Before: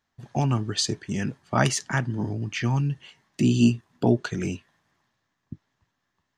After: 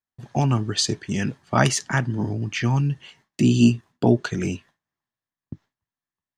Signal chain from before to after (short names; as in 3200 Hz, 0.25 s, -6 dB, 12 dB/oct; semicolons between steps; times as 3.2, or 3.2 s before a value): 0.87–1.6 dynamic EQ 3500 Hz, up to +4 dB, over -48 dBFS, Q 1.1; gate with hold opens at -48 dBFS; gain +3 dB